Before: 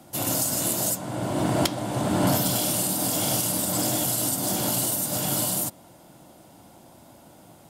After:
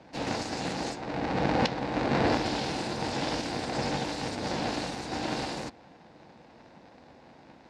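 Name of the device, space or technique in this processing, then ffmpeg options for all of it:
ring modulator pedal into a guitar cabinet: -af "aeval=exprs='val(0)*sgn(sin(2*PI*170*n/s))':c=same,highpass=100,equalizer=f=110:t=q:w=4:g=-5,equalizer=f=230:t=q:w=4:g=7,equalizer=f=410:t=q:w=4:g=-9,equalizer=f=1200:t=q:w=4:g=-8,equalizer=f=3200:t=q:w=4:g=-8,lowpass=f=4500:w=0.5412,lowpass=f=4500:w=1.3066"

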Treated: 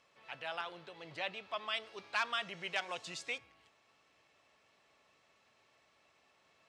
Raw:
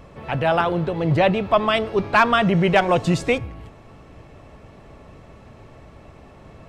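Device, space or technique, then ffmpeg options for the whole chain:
piezo pickup straight into a mixer: -filter_complex "[0:a]asettb=1/sr,asplit=3[s0][s1][s2];[s0]atrim=end=1.834[s3];[s1]atrim=start=1.83:end=3.05,asetpts=PTS-STARTPTS,afade=t=in:d=0.004:c=qsin,afade=t=out:st=1.216:d=0.004:c=qsin,highshelf=f=7000:g=5[s4];[s2]atrim=start=3.046[s5];[s3][s4]acrossfade=d=0.004:c1=hsin:c2=qsin[s6];[s6][s5]acrossfade=d=0.004:c1=qsin:c2=hsin,lowpass=5100,aderivative,volume=0.596"

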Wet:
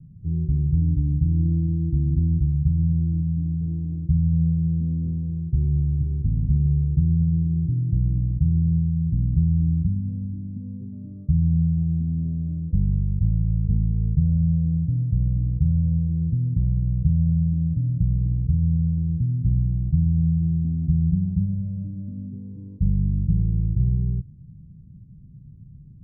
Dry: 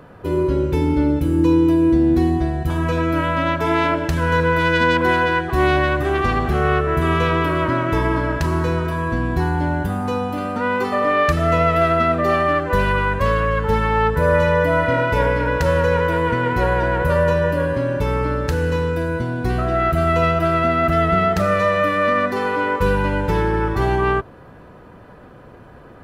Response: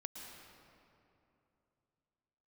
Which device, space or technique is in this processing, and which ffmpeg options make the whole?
the neighbour's flat through the wall: -af "lowpass=f=160:w=0.5412,lowpass=f=160:w=1.3066,equalizer=f=160:t=o:w=0.98:g=7"

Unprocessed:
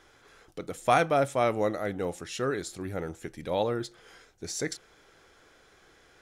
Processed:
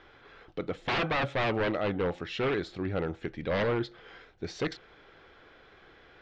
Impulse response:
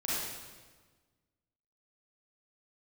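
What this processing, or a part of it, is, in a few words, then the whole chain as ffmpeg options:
synthesiser wavefolder: -af "aeval=exprs='0.0501*(abs(mod(val(0)/0.0501+3,4)-2)-1)':c=same,lowpass=f=3800:w=0.5412,lowpass=f=3800:w=1.3066,volume=1.5"

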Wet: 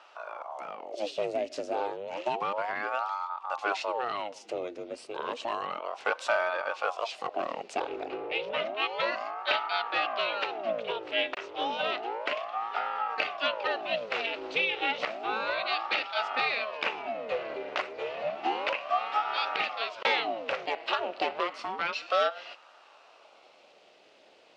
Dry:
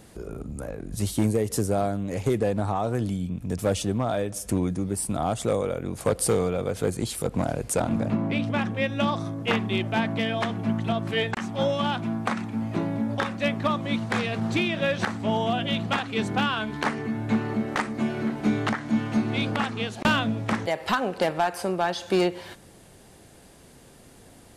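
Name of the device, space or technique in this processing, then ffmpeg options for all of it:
voice changer toy: -af "aeval=exprs='val(0)*sin(2*PI*620*n/s+620*0.75/0.31*sin(2*PI*0.31*n/s))':c=same,highpass=560,equalizer=f=610:t=q:w=4:g=4,equalizer=f=990:t=q:w=4:g=-5,equalizer=f=1700:t=q:w=4:g=-5,equalizer=f=2700:t=q:w=4:g=7,lowpass=f=4900:w=0.5412,lowpass=f=4900:w=1.3066"

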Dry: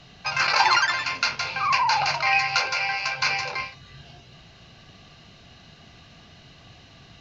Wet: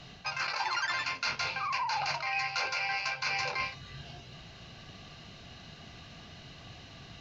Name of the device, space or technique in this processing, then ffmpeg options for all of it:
compression on the reversed sound: -af "areverse,acompressor=threshold=0.0355:ratio=12,areverse"

